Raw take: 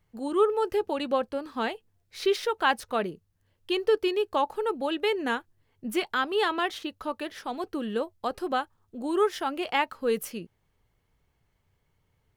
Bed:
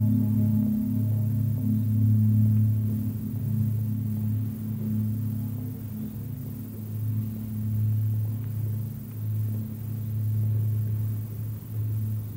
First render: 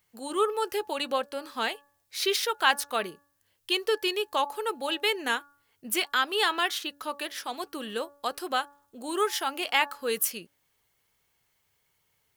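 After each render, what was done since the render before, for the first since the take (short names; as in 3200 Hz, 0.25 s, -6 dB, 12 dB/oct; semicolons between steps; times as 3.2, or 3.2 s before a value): tilt +3.5 dB/oct; de-hum 285.2 Hz, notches 6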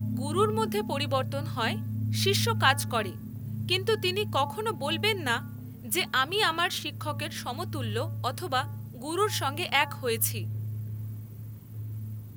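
add bed -8.5 dB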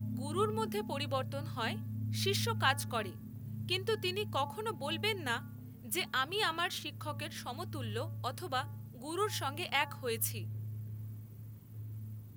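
gain -7.5 dB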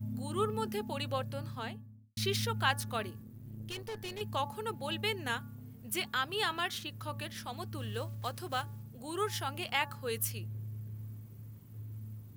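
1.34–2.17 studio fade out; 3.22–4.21 tube stage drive 37 dB, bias 0.7; 7.78–8.84 block floating point 5-bit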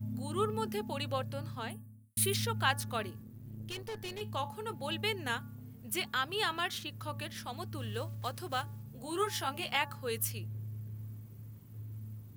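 1.7–2.34 resonant high shelf 7300 Hz +11.5 dB, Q 3; 4.2–4.73 resonator 53 Hz, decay 0.19 s, mix 50%; 8.86–9.77 doubler 15 ms -4.5 dB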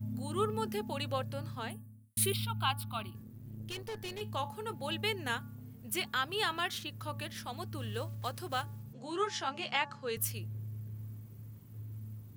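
2.32–3.15 fixed phaser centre 1800 Hz, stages 6; 8.93–10.17 Chebyshev band-pass 140–6700 Hz, order 3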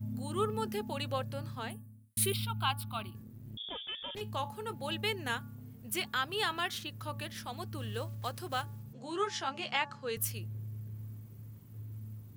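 3.57–4.15 inverted band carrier 3500 Hz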